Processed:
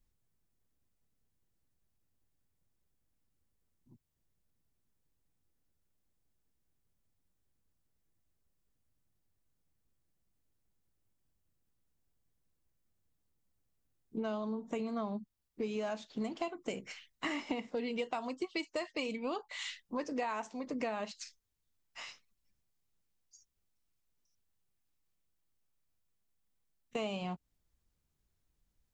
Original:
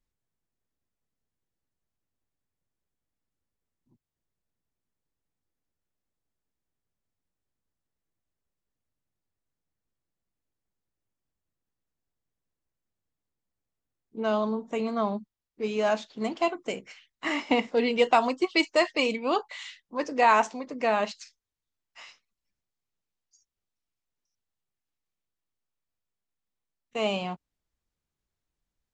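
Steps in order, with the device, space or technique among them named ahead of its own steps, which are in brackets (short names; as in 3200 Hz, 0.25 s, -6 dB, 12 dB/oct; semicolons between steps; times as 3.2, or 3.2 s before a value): ASMR close-microphone chain (low shelf 250 Hz +8 dB; compressor 10:1, threshold -34 dBFS, peak gain reduction 19 dB; high shelf 6900 Hz +6 dB)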